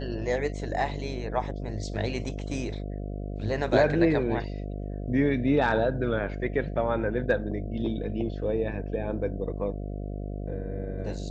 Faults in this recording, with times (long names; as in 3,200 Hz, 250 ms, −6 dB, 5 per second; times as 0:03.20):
mains buzz 50 Hz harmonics 14 −34 dBFS